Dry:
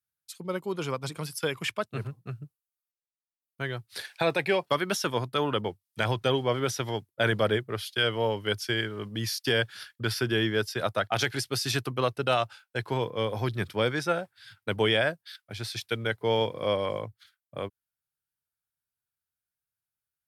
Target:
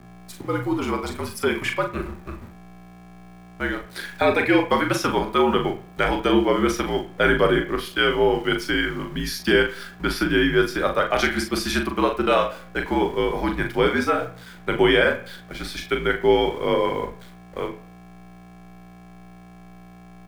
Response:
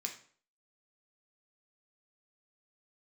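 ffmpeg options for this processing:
-filter_complex "[0:a]aeval=exprs='val(0)+0.00562*(sin(2*PI*60*n/s)+sin(2*PI*2*60*n/s)/2+sin(2*PI*3*60*n/s)/3+sin(2*PI*4*60*n/s)/4+sin(2*PI*5*60*n/s)/5)':c=same,aeval=exprs='val(0)*gte(abs(val(0)),0.00562)':c=same,afreqshift=-61,asplit=2[a][b];[b]adelay=40,volume=-6dB[c];[a][c]amix=inputs=2:normalize=0,asplit=2[d][e];[1:a]atrim=start_sample=2205,lowpass=2.2k[f];[e][f]afir=irnorm=-1:irlink=0,volume=3.5dB[g];[d][g]amix=inputs=2:normalize=0,volume=1.5dB"

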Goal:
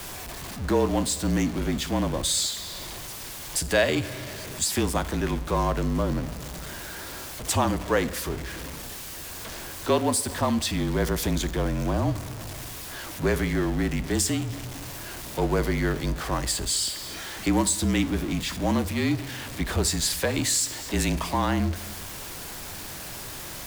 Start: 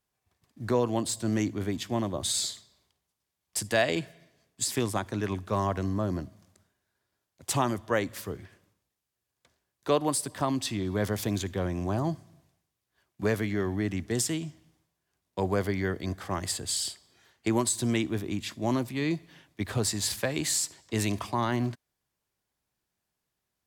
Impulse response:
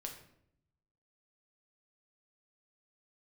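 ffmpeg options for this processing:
-filter_complex "[0:a]aeval=exprs='val(0)+0.5*0.0224*sgn(val(0))':c=same,asplit=2[a][b];[1:a]atrim=start_sample=2205[c];[b][c]afir=irnorm=-1:irlink=0,volume=-6dB[d];[a][d]amix=inputs=2:normalize=0,afreqshift=-37"

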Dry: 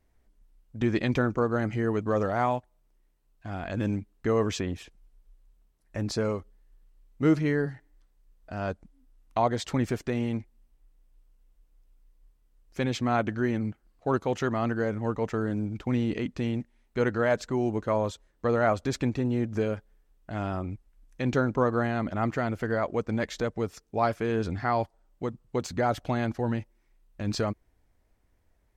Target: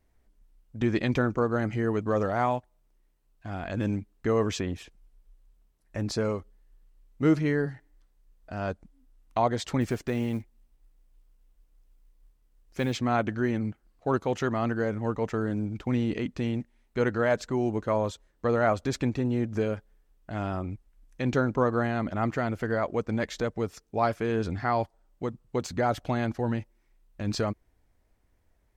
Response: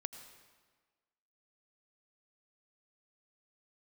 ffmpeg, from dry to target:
-filter_complex "[0:a]asettb=1/sr,asplit=3[a][b][c];[a]atrim=end=9.814[d];[b]atrim=start=9.81:end=12.97,asetpts=PTS-STARTPTS,afade=t=in:d=0.004:c=qsin,afade=t=out:st=3.156:d=0.004:c=qsin,acrusher=bits=8:mode=log:mix=0:aa=0.000001[e];[c]atrim=start=12.966[f];[d][e]acrossfade=d=0.004:c1=hsin:c2=qsin[g];[g][f]acrossfade=d=0.004:c1=qsin:c2=hsin"

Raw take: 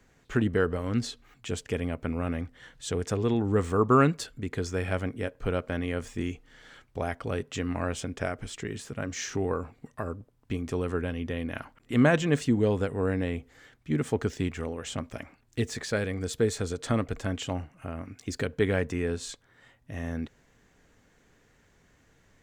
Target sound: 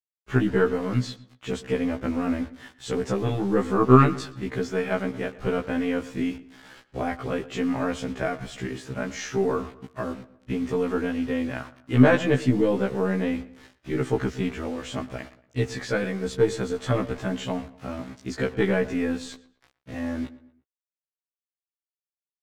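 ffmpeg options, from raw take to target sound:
-filter_complex "[0:a]aeval=exprs='0.376*(cos(1*acos(clip(val(0)/0.376,-1,1)))-cos(1*PI/2))+0.0188*(cos(4*acos(clip(val(0)/0.376,-1,1)))-cos(4*PI/2))':c=same,acrusher=bits=7:mix=0:aa=0.000001,aemphasis=mode=reproduction:type=50fm,asplit=2[a][b];[b]adelay=117,lowpass=f=2.7k:p=1,volume=-17.5dB,asplit=2[c][d];[d]adelay=117,lowpass=f=2.7k:p=1,volume=0.41,asplit=2[e][f];[f]adelay=117,lowpass=f=2.7k:p=1,volume=0.41[g];[c][e][g]amix=inputs=3:normalize=0[h];[a][h]amix=inputs=2:normalize=0,afftfilt=real='re*1.73*eq(mod(b,3),0)':imag='im*1.73*eq(mod(b,3),0)':win_size=2048:overlap=0.75,volume=6.5dB"

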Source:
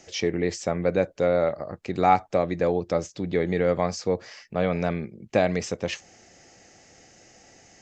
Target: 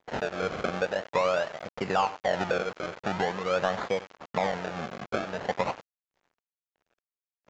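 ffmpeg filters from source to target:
-filter_complex "[0:a]asetrate=45938,aresample=44100,tremolo=f=1.6:d=0.81,acompressor=threshold=-28dB:ratio=16,acrusher=samples=32:mix=1:aa=0.000001:lfo=1:lforange=32:lforate=0.45,highpass=f=53:p=1,equalizer=f=310:w=1.7:g=-8.5,aecho=1:1:96|192|288:0.119|0.0511|0.022,acrusher=bits=7:mix=0:aa=0.000001,asplit=2[a][b];[b]highpass=f=720:p=1,volume=18dB,asoftclip=type=tanh:threshold=-6.5dB[c];[a][c]amix=inputs=2:normalize=0,lowpass=f=1k:p=1,volume=-6dB,agate=range=-26dB:threshold=-47dB:ratio=16:detection=peak,volume=2.5dB" -ar 16000 -c:a pcm_mulaw

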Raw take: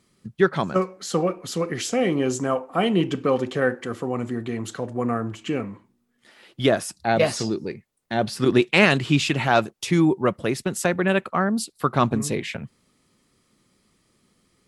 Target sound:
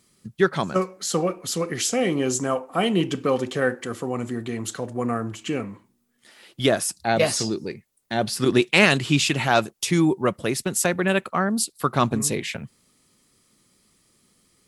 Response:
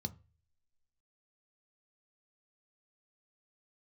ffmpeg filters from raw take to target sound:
-af "highshelf=f=4.9k:g=10.5,volume=-1dB"

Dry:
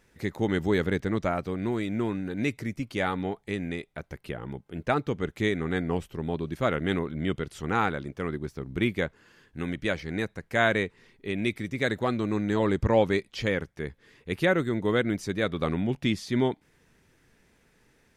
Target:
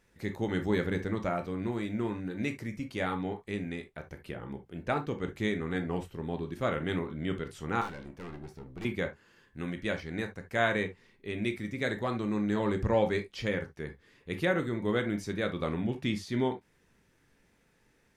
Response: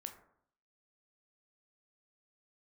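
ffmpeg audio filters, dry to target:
-filter_complex "[0:a]asettb=1/sr,asplit=3[a][b][c];[a]atrim=end=7.814[d];[b]atrim=start=7.81:end=8.85,asetpts=PTS-STARTPTS,afade=t=in:d=0.004:c=qsin,afade=t=out:st=1.036:d=0.004:c=qsin,aeval=exprs='(tanh(50.1*val(0)+0.45)-tanh(0.45))/50.1':c=same[e];[c]atrim=start=8.846[f];[d][e]acrossfade=d=0.004:c1=hsin:c2=qsin[g];[g][f]acrossfade=d=0.004:c1=qsin:c2=hsin[h];[1:a]atrim=start_sample=2205,atrim=end_sample=3528[i];[h][i]afir=irnorm=-1:irlink=0"

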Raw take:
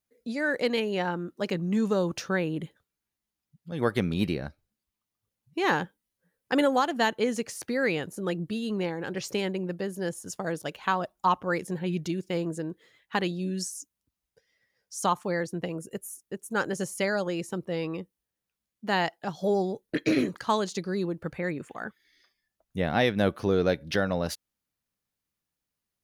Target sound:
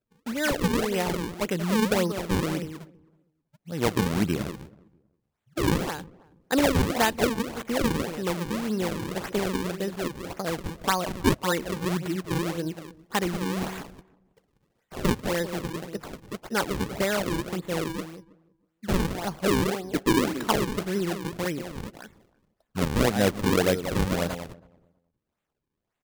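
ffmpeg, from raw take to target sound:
-filter_complex "[0:a]asplit=2[a][b];[b]aecho=0:1:187:0.335[c];[a][c]amix=inputs=2:normalize=0,acrusher=samples=38:mix=1:aa=0.000001:lfo=1:lforange=60.8:lforate=1.8,asplit=2[d][e];[e]adelay=322,lowpass=f=820:p=1,volume=-22dB,asplit=2[f][g];[g]adelay=322,lowpass=f=820:p=1,volume=0.2[h];[f][h]amix=inputs=2:normalize=0[i];[d][i]amix=inputs=2:normalize=0,volume=1.5dB"

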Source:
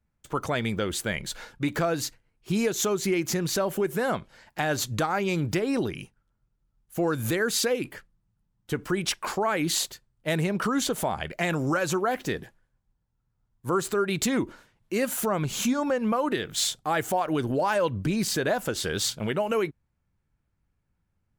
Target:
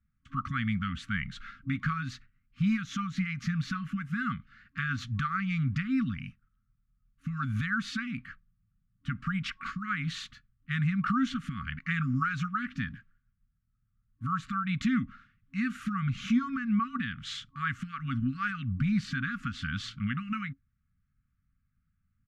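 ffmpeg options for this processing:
-af "asetrate=42336,aresample=44100,afftfilt=real='re*(1-between(b*sr/4096,270,1100))':imag='im*(1-between(b*sr/4096,270,1100))':win_size=4096:overlap=0.75,lowpass=2.1k"

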